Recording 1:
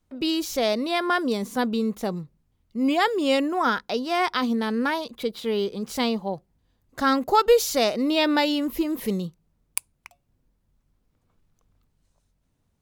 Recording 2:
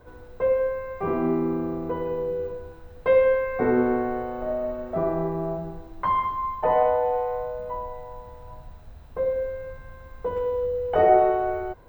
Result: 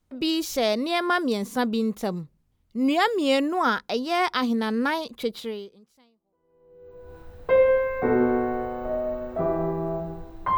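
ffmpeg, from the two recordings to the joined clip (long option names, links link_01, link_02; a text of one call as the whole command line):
ffmpeg -i cue0.wav -i cue1.wav -filter_complex "[0:a]apad=whole_dur=10.57,atrim=end=10.57,atrim=end=7.17,asetpts=PTS-STARTPTS[link_01];[1:a]atrim=start=0.96:end=6.14,asetpts=PTS-STARTPTS[link_02];[link_01][link_02]acrossfade=duration=1.78:curve1=exp:curve2=exp" out.wav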